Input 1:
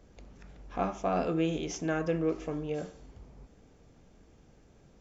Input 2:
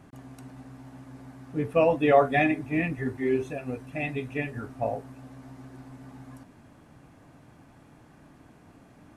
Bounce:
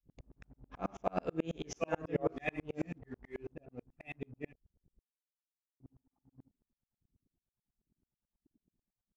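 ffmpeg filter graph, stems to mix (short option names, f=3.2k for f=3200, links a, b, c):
-filter_complex "[0:a]volume=1dB[a];[1:a]acrossover=split=620[b][c];[b]aeval=exprs='val(0)*(1-0.7/2+0.7/2*cos(2*PI*1.4*n/s))':c=same[d];[c]aeval=exprs='val(0)*(1-0.7/2-0.7/2*cos(2*PI*1.4*n/s))':c=same[e];[d][e]amix=inputs=2:normalize=0,adelay=50,volume=-4dB,asplit=3[f][g][h];[f]atrim=end=4.53,asetpts=PTS-STARTPTS,afade=t=out:st=4.526:d=0.004:c=hsin[i];[g]atrim=start=4.53:end=5.8,asetpts=PTS-STARTPTS,volume=0[j];[h]atrim=start=5.8,asetpts=PTS-STARTPTS,afade=t=in:d=0.004:c=hsin[k];[i][j][k]concat=n=3:v=0:a=1[l];[a][l]amix=inputs=2:normalize=0,bandreject=f=230.5:t=h:w=4,bandreject=f=461:t=h:w=4,bandreject=f=691.5:t=h:w=4,bandreject=f=922:t=h:w=4,bandreject=f=1.1525k:t=h:w=4,bandreject=f=1.383k:t=h:w=4,bandreject=f=1.6135k:t=h:w=4,bandreject=f=1.844k:t=h:w=4,bandreject=f=2.0745k:t=h:w=4,bandreject=f=2.305k:t=h:w=4,bandreject=f=2.5355k:t=h:w=4,bandreject=f=2.766k:t=h:w=4,bandreject=f=2.9965k:t=h:w=4,bandreject=f=3.227k:t=h:w=4,bandreject=f=3.4575k:t=h:w=4,bandreject=f=3.688k:t=h:w=4,bandreject=f=3.9185k:t=h:w=4,bandreject=f=4.149k:t=h:w=4,bandreject=f=4.3795k:t=h:w=4,bandreject=f=4.61k:t=h:w=4,bandreject=f=4.8405k:t=h:w=4,bandreject=f=5.071k:t=h:w=4,bandreject=f=5.3015k:t=h:w=4,bandreject=f=5.532k:t=h:w=4,bandreject=f=5.7625k:t=h:w=4,bandreject=f=5.993k:t=h:w=4,bandreject=f=6.2235k:t=h:w=4,anlmdn=0.01,aeval=exprs='val(0)*pow(10,-39*if(lt(mod(-9.2*n/s,1),2*abs(-9.2)/1000),1-mod(-9.2*n/s,1)/(2*abs(-9.2)/1000),(mod(-9.2*n/s,1)-2*abs(-9.2)/1000)/(1-2*abs(-9.2)/1000))/20)':c=same"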